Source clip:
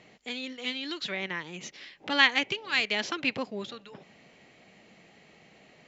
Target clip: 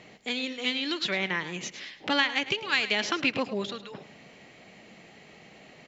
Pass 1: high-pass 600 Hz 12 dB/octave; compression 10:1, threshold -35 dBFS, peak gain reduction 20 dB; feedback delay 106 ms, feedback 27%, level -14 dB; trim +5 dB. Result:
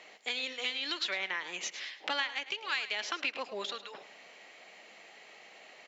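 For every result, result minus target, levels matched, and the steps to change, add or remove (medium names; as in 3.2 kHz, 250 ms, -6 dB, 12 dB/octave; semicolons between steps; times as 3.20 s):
compression: peak gain reduction +8.5 dB; 500 Hz band -2.5 dB
change: compression 10:1, threshold -25.5 dBFS, peak gain reduction 11.5 dB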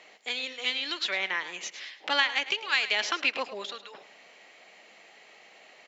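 500 Hz band -4.5 dB
remove: high-pass 600 Hz 12 dB/octave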